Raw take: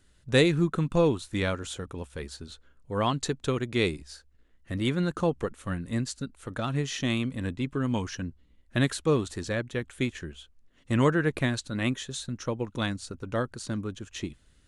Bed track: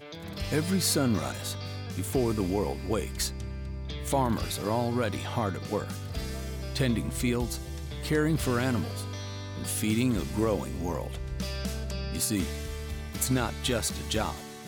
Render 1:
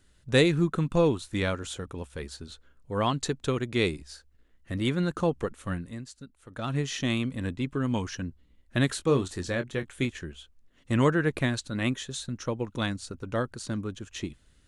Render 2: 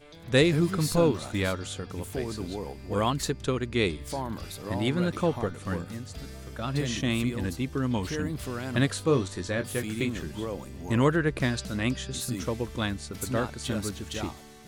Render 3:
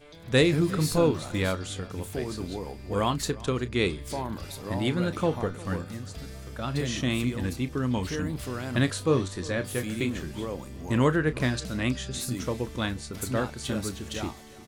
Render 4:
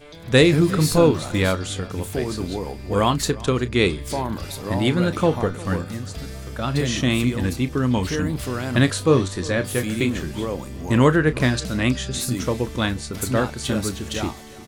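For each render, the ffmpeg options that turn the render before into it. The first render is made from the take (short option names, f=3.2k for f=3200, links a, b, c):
-filter_complex "[0:a]asettb=1/sr,asplit=3[a][b][c];[a]atrim=end=8.874[d];[b]atrim=start=8.87:end=10.05,asetpts=PTS-STARTPTS,afade=t=in:d=0.004:c=qsin,afade=t=out:st=1.176:d=0.004:c=qsin,asplit=2[e][f];[f]adelay=22,volume=-9.5dB[g];[e][g]amix=inputs=2:normalize=0,atrim=end_sample=52038[h];[c]atrim=start=10.046[i];[d][h]acrossfade=d=0.004:c1=hsin:c2=qsin[j];[j][i]acrossfade=d=0.004:c1=qsin:c2=hsin,asplit=3[k][l][m];[k]atrim=end=5.96,asetpts=PTS-STARTPTS,afade=t=out:st=5.77:d=0.19:silence=0.298538[n];[l]atrim=start=5.96:end=6.51,asetpts=PTS-STARTPTS,volume=-10.5dB[o];[m]atrim=start=6.51,asetpts=PTS-STARTPTS,afade=t=in:d=0.19:silence=0.298538[p];[n][o][p]concat=n=3:v=0:a=1"
-filter_complex "[1:a]volume=-7dB[a];[0:a][a]amix=inputs=2:normalize=0"
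-filter_complex "[0:a]asplit=2[a][b];[b]adelay=32,volume=-13.5dB[c];[a][c]amix=inputs=2:normalize=0,asplit=2[d][e];[e]adelay=355.7,volume=-20dB,highshelf=f=4k:g=-8[f];[d][f]amix=inputs=2:normalize=0"
-af "volume=7dB,alimiter=limit=-3dB:level=0:latency=1"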